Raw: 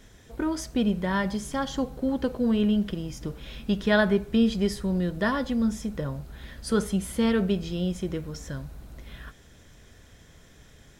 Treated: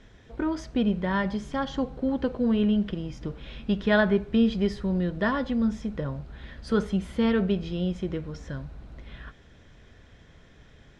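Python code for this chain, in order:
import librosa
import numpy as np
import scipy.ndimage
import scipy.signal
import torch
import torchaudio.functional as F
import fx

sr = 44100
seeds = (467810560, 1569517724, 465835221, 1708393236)

y = scipy.signal.sosfilt(scipy.signal.butter(2, 3700.0, 'lowpass', fs=sr, output='sos'), x)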